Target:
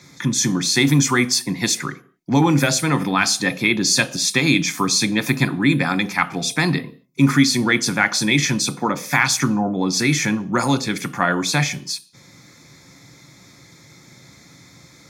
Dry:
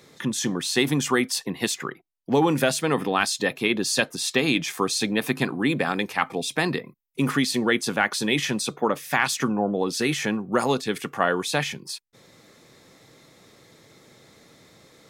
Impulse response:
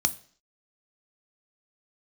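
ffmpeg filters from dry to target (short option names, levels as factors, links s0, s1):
-filter_complex "[0:a]asplit=2[s0][s1];[1:a]atrim=start_sample=2205,afade=t=out:st=0.32:d=0.01,atrim=end_sample=14553[s2];[s1][s2]afir=irnorm=-1:irlink=0,volume=1.12[s3];[s0][s3]amix=inputs=2:normalize=0,volume=0.631"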